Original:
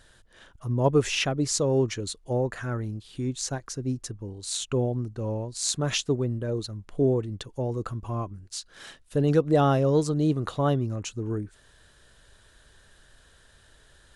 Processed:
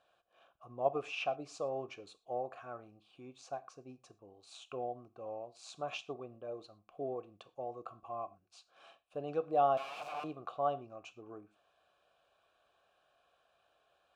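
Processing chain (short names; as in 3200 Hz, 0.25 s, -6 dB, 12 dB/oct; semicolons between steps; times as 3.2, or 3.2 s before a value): 9.77–10.24 wrapped overs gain 27 dB; vowel filter a; non-linear reverb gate 0.14 s falling, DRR 12 dB; gain +1 dB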